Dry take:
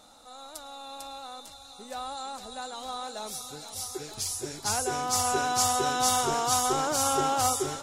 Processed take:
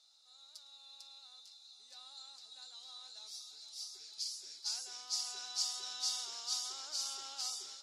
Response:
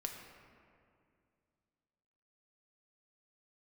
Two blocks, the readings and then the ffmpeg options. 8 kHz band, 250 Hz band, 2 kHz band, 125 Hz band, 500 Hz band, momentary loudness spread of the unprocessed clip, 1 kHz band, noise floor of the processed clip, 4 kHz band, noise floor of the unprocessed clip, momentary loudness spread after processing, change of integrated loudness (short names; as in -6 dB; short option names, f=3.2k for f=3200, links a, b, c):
-12.5 dB, under -35 dB, -21.0 dB, under -40 dB, -33.5 dB, 18 LU, -28.0 dB, -60 dBFS, -5.0 dB, -49 dBFS, 18 LU, -12.0 dB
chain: -filter_complex "[0:a]bandpass=f=4.7k:t=q:w=4:csg=0,asplit=2[a][b];[1:a]atrim=start_sample=2205,asetrate=40572,aresample=44100[c];[b][c]afir=irnorm=-1:irlink=0,volume=-9dB[d];[a][d]amix=inputs=2:normalize=0,volume=-3.5dB"